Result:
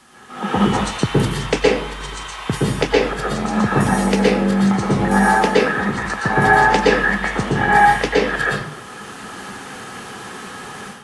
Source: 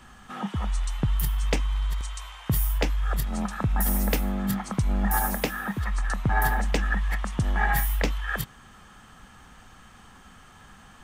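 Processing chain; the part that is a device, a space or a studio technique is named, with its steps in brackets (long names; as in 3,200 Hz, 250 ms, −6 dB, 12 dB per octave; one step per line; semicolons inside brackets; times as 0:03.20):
filmed off a television (band-pass filter 170–7,000 Hz; parametric band 410 Hz +6 dB 0.52 octaves; convolution reverb RT60 0.70 s, pre-delay 112 ms, DRR −6 dB; white noise bed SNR 29 dB; automatic gain control gain up to 12.5 dB; AAC 48 kbit/s 24,000 Hz)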